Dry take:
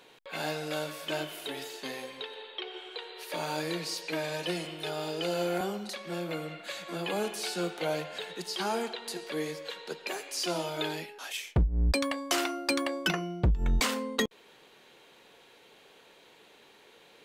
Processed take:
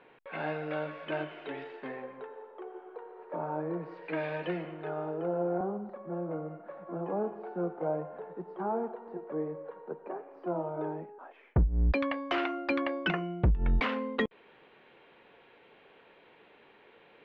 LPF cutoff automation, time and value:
LPF 24 dB/oct
1.64 s 2300 Hz
2.51 s 1200 Hz
3.78 s 1200 Hz
4.22 s 2600 Hz
5.43 s 1100 Hz
11.28 s 1100 Hz
11.81 s 2700 Hz

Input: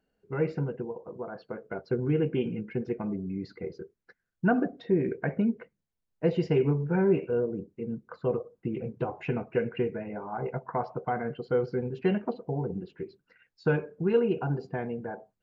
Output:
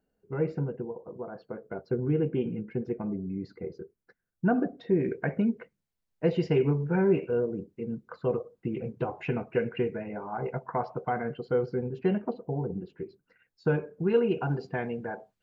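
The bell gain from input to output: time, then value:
bell 3000 Hz 2.5 oct
4.47 s -7 dB
5.06 s +1.5 dB
11.23 s +1.5 dB
11.83 s -5 dB
13.69 s -5 dB
14.56 s +6.5 dB

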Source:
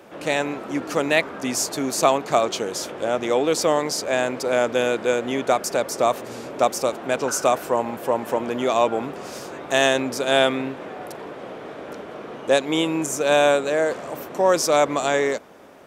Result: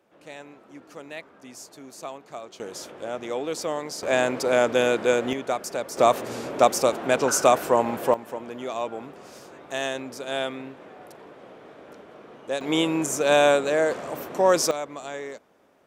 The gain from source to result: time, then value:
-19 dB
from 2.6 s -9 dB
from 4.03 s 0 dB
from 5.33 s -7 dB
from 5.97 s +1.5 dB
from 8.14 s -10.5 dB
from 12.61 s -1 dB
from 14.71 s -14 dB

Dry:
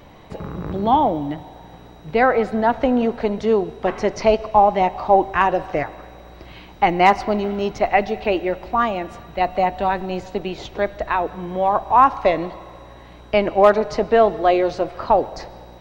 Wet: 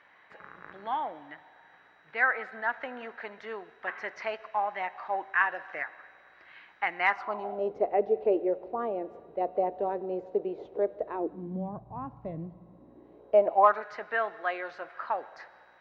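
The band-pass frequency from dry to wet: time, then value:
band-pass, Q 3.7
7.1 s 1700 Hz
7.74 s 450 Hz
11.08 s 450 Hz
11.82 s 140 Hz
12.49 s 140 Hz
13.5 s 690 Hz
13.83 s 1600 Hz

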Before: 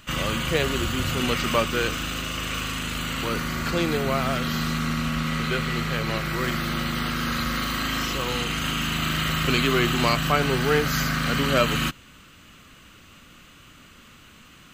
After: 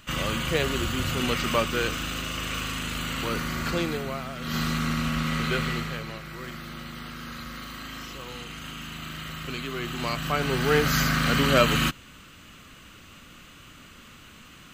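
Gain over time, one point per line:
3.73 s -2 dB
4.35 s -12 dB
4.56 s -1 dB
5.67 s -1 dB
6.18 s -12 dB
9.72 s -12 dB
10.88 s +1 dB

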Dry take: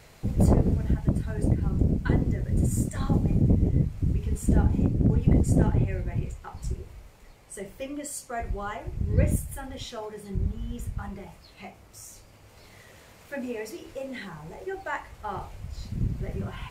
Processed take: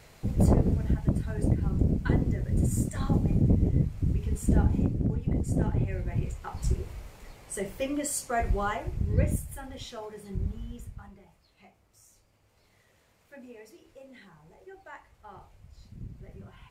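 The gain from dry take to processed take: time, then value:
4.77 s -1.5 dB
5.25 s -8.5 dB
6.72 s +4.5 dB
8.64 s +4.5 dB
9.28 s -3.5 dB
10.57 s -3.5 dB
11.19 s -14 dB

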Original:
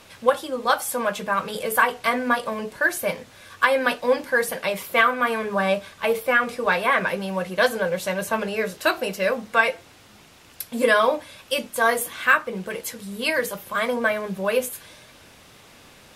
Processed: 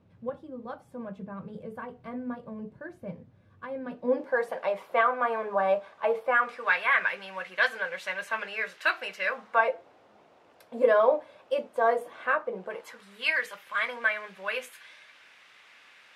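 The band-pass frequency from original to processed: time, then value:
band-pass, Q 1.5
3.89 s 130 Hz
4.36 s 750 Hz
6.23 s 750 Hz
6.71 s 1900 Hz
9.25 s 1900 Hz
9.72 s 610 Hz
12.57 s 610 Hz
13.2 s 2000 Hz

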